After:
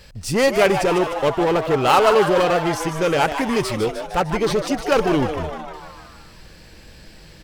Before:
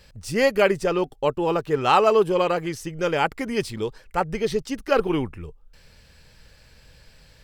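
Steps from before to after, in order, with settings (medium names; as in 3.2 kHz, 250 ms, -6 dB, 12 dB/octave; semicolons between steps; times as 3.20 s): in parallel at -3 dB: wavefolder -22.5 dBFS; on the sum: frequency-shifting echo 152 ms, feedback 60%, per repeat +150 Hz, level -9 dB; trim +2 dB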